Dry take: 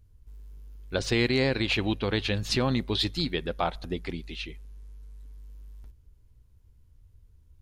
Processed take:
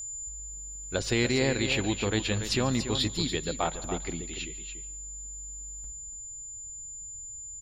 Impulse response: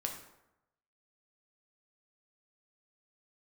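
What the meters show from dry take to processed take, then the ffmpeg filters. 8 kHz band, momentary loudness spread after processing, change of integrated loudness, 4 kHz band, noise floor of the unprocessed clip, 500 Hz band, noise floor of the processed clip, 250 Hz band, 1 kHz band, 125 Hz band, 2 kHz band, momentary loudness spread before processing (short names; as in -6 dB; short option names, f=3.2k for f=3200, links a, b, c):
+13.5 dB, 13 LU, -3.0 dB, -1.0 dB, -59 dBFS, -1.0 dB, -42 dBFS, -1.0 dB, -1.0 dB, -1.0 dB, -1.0 dB, 12 LU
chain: -filter_complex "[0:a]aeval=exprs='val(0)+0.02*sin(2*PI*7100*n/s)':c=same,aecho=1:1:286:0.355,asplit=2[a][b];[1:a]atrim=start_sample=2205,adelay=143[c];[b][c]afir=irnorm=-1:irlink=0,volume=-19.5dB[d];[a][d]amix=inputs=2:normalize=0,volume=-1.5dB"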